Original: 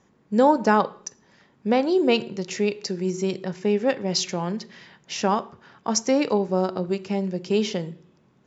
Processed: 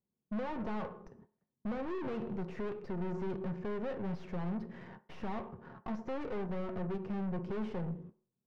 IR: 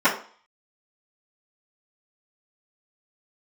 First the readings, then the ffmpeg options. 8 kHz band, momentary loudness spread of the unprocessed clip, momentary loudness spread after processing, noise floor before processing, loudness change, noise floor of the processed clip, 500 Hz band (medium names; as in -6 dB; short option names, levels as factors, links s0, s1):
no reading, 14 LU, 9 LU, -61 dBFS, -15.5 dB, under -85 dBFS, -17.0 dB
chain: -filter_complex "[0:a]agate=range=0.0224:threshold=0.00282:ratio=16:detection=peak,acompressor=threshold=0.00891:ratio=1.5,aeval=exprs='(tanh(126*val(0)+0.35)-tanh(0.35))/126':c=same,adynamicsmooth=sensitivity=5:basefreq=740,asplit=2[s0][s1];[1:a]atrim=start_sample=2205[s2];[s1][s2]afir=irnorm=-1:irlink=0,volume=0.0355[s3];[s0][s3]amix=inputs=2:normalize=0,volume=2.24"